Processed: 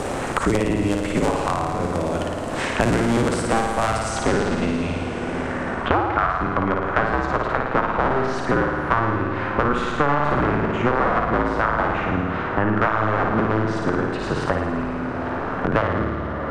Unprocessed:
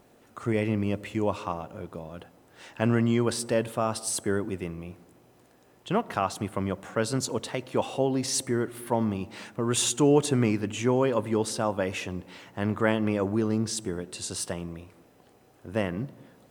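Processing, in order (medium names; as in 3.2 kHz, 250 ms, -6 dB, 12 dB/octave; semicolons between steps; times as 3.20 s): cycle switcher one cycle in 2, inverted; low-pass sweep 8.4 kHz -> 1.4 kHz, 3.89–5.85 s; on a send: flutter echo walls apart 9.5 m, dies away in 0.91 s; on the sum: plate-style reverb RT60 3.2 s, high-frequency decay 0.6×, DRR 14 dB; loudness maximiser +7 dB; three bands compressed up and down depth 100%; trim -4.5 dB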